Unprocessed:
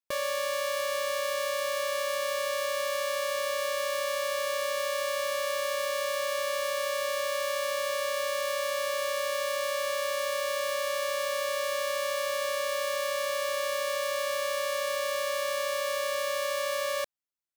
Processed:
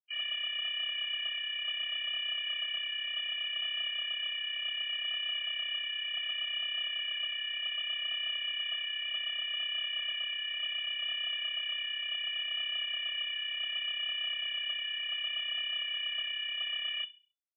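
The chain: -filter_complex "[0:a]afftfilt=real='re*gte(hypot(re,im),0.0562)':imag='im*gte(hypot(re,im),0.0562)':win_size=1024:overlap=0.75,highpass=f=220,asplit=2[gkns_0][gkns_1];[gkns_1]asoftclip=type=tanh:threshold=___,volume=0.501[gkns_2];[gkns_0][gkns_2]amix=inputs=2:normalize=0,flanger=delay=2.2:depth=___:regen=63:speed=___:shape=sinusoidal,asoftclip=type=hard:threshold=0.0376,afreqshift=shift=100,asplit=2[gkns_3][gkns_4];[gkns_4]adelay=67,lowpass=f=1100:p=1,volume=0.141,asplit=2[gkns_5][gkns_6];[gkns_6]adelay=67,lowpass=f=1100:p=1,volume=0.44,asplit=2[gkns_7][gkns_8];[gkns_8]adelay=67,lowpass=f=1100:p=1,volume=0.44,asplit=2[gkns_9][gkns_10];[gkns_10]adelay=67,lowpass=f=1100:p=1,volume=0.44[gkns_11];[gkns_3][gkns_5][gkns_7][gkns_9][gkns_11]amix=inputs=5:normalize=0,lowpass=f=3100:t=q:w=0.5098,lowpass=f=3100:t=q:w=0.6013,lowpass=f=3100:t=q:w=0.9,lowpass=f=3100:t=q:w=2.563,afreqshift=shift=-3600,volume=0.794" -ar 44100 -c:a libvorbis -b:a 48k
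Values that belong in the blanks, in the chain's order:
0.0224, 7, 0.67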